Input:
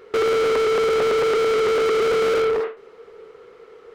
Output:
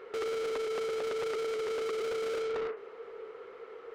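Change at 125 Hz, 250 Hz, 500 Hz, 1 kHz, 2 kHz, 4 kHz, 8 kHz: under -15 dB, -15.0 dB, -14.0 dB, -16.0 dB, -15.0 dB, -13.5 dB, -11.5 dB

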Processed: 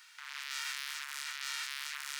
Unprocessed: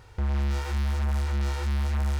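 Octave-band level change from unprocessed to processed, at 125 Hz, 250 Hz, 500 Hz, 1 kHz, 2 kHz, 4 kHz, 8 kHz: under -40 dB, under -40 dB, under -35 dB, -8.5 dB, +1.5 dB, +4.5 dB, +5.5 dB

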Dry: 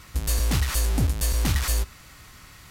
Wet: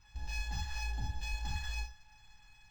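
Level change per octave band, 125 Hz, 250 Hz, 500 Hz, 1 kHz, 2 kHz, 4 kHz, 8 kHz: -16.0 dB, -22.5 dB, -25.5 dB, -9.0 dB, -8.0 dB, -12.5 dB, -20.0 dB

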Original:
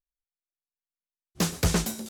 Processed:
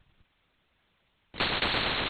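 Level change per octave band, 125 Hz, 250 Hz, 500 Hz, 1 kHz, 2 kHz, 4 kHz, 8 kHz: -11.5 dB, -8.5 dB, -1.5 dB, +5.0 dB, +7.5 dB, +6.0 dB, under -30 dB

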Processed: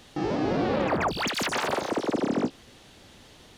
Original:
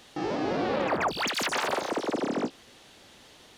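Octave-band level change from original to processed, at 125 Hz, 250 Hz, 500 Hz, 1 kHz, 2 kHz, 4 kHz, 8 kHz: +7.0 dB, +4.0 dB, +1.5 dB, +0.5 dB, 0.0 dB, 0.0 dB, 0.0 dB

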